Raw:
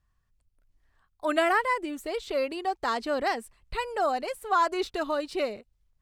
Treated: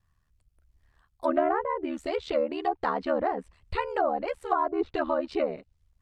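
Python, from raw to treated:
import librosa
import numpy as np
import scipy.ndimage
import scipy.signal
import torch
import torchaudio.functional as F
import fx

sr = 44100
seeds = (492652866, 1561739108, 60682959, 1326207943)

y = x * np.sin(2.0 * np.pi * 38.0 * np.arange(len(x)) / sr)
y = fx.env_lowpass_down(y, sr, base_hz=780.0, full_db=-25.5)
y = y * 10.0 ** (5.0 / 20.0)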